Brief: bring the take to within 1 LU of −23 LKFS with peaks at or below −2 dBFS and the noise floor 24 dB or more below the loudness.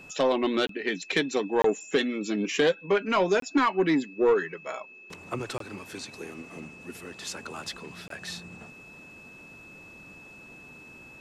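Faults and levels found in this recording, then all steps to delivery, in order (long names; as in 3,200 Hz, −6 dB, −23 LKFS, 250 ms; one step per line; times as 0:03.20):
number of dropouts 5; longest dropout 23 ms; interfering tone 2,600 Hz; level of the tone −47 dBFS; integrated loudness −27.5 LKFS; sample peak −14.5 dBFS; target loudness −23.0 LKFS
→ repair the gap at 0:00.67/0:01.62/0:03.40/0:05.58/0:08.08, 23 ms
notch filter 2,600 Hz, Q 30
level +4.5 dB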